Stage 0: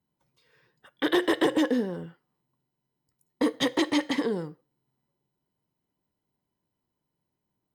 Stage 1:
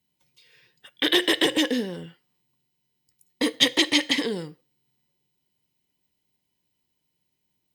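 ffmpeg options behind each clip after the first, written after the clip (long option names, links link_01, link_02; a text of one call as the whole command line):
ffmpeg -i in.wav -af "highshelf=frequency=1800:width_type=q:width=1.5:gain=10" out.wav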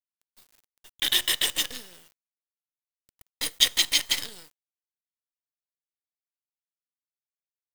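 ffmpeg -i in.wav -af "aderivative,acrusher=bits=6:dc=4:mix=0:aa=0.000001,volume=5.5dB" out.wav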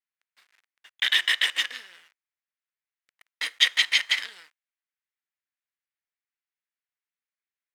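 ffmpeg -i in.wav -af "bandpass=frequency=1900:width_type=q:width=2:csg=0,volume=9dB" out.wav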